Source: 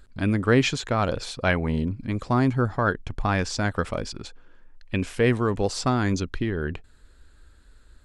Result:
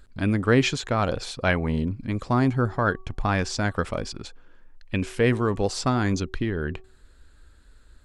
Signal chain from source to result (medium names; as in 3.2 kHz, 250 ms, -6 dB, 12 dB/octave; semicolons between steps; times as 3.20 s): de-hum 377.4 Hz, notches 3